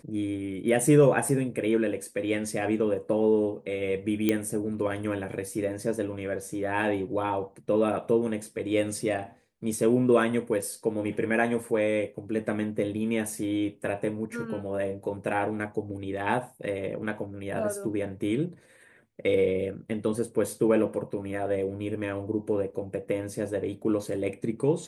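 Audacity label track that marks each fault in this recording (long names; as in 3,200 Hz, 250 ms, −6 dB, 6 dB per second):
4.290000	4.290000	click −11 dBFS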